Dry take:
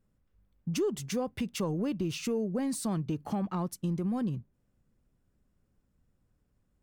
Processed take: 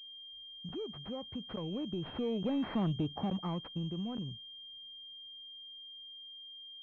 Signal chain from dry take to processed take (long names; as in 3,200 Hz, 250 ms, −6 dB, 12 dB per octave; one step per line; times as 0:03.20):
source passing by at 0:02.83, 13 m/s, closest 5 metres
in parallel at −3 dB: downward compressor, threshold −42 dBFS, peak gain reduction 13 dB
on the sum: soft clipping −24 dBFS, distortion −22 dB
regular buffer underruns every 0.87 s, samples 512, zero, from 0:00.69
switching amplifier with a slow clock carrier 3,200 Hz